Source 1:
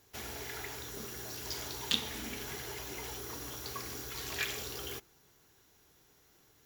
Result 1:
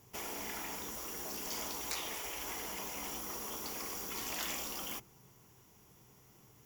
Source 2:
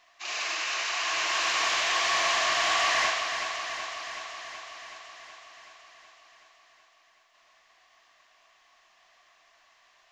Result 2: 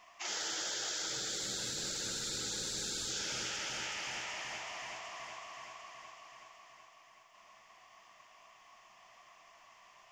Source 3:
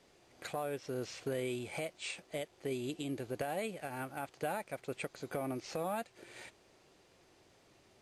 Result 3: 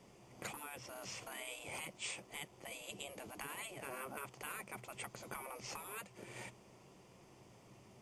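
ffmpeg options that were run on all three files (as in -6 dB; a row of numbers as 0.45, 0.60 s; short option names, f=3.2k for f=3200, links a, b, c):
-af "equalizer=f=125:t=o:w=0.33:g=11,equalizer=f=200:t=o:w=0.33:g=10,equalizer=f=1k:t=o:w=0.33:g=5,equalizer=f=1.6k:t=o:w=0.33:g=-8,equalizer=f=4k:t=o:w=0.33:g=-11,afftfilt=real='re*lt(hypot(re,im),0.0282)':imag='im*lt(hypot(re,im),0.0282)':win_size=1024:overlap=0.75,volume=2.5dB"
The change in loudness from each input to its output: -0.5, -11.0, -6.5 LU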